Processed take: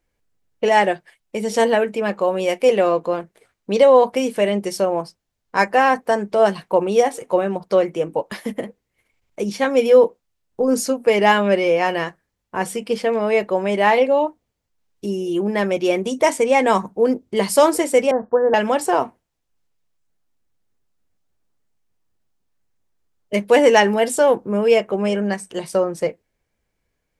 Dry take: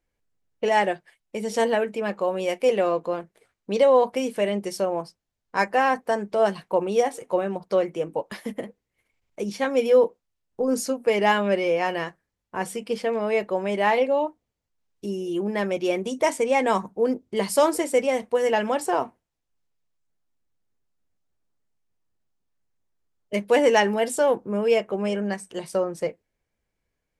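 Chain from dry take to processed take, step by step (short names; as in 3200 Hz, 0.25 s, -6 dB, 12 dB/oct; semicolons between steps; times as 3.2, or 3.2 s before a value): 18.11–18.54 steep low-pass 1700 Hz 96 dB/oct; gain +5.5 dB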